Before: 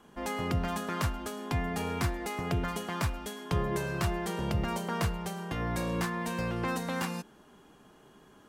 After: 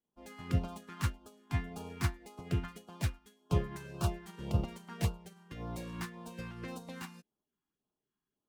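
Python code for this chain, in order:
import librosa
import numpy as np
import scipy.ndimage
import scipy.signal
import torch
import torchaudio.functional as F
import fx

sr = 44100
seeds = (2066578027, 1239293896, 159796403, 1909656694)

y = fx.self_delay(x, sr, depth_ms=0.077)
y = fx.filter_lfo_notch(y, sr, shape='sine', hz=1.8, low_hz=490.0, high_hz=2000.0, q=0.96)
y = fx.upward_expand(y, sr, threshold_db=-49.0, expansion=2.5)
y = y * 10.0 ** (2.5 / 20.0)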